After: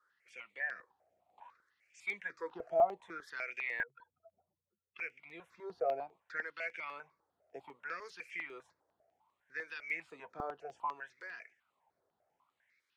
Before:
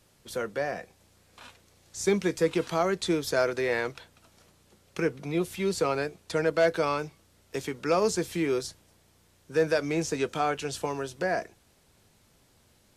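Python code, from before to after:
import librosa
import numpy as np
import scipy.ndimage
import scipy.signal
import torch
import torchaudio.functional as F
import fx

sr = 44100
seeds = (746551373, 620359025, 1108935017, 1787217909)

y = fx.spec_expand(x, sr, power=3.4, at=(3.83, 4.98))
y = fx.wah_lfo(y, sr, hz=0.64, low_hz=660.0, high_hz=2400.0, q=9.0)
y = fx.phaser_held(y, sr, hz=10.0, low_hz=710.0, high_hz=5400.0)
y = y * librosa.db_to_amplitude(6.5)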